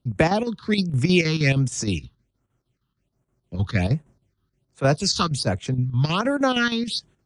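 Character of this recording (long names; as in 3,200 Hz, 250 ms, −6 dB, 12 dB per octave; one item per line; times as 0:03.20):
chopped level 6.4 Hz, depth 60%, duty 75%
phaser sweep stages 6, 1.3 Hz, lowest notch 580–4,600 Hz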